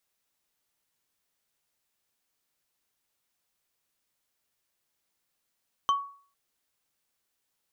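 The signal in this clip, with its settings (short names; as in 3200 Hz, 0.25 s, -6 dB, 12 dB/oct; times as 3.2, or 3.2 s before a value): wood hit, lowest mode 1120 Hz, decay 0.46 s, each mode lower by 9.5 dB, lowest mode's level -18.5 dB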